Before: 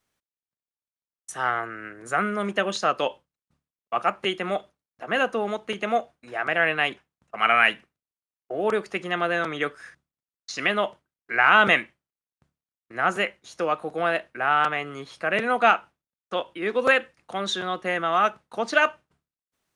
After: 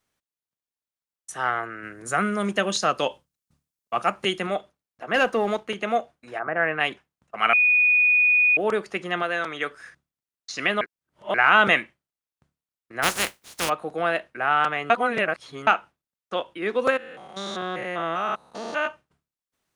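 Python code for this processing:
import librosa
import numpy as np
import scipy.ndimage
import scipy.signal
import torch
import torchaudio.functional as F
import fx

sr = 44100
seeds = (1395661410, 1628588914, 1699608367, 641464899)

y = fx.bass_treble(x, sr, bass_db=5, treble_db=8, at=(1.83, 4.47))
y = fx.leveller(y, sr, passes=1, at=(5.14, 5.69))
y = fx.lowpass(y, sr, hz=fx.line((6.38, 1300.0), (6.79, 2400.0)), slope=24, at=(6.38, 6.79), fade=0.02)
y = fx.low_shelf(y, sr, hz=400.0, db=-8.5, at=(9.22, 9.71))
y = fx.spec_flatten(y, sr, power=0.27, at=(13.02, 13.68), fade=0.02)
y = fx.spec_steps(y, sr, hold_ms=200, at=(16.89, 18.86), fade=0.02)
y = fx.edit(y, sr, fx.bleep(start_s=7.53, length_s=1.04, hz=2470.0, db=-15.0),
    fx.reverse_span(start_s=10.81, length_s=0.53),
    fx.reverse_span(start_s=14.9, length_s=0.77), tone=tone)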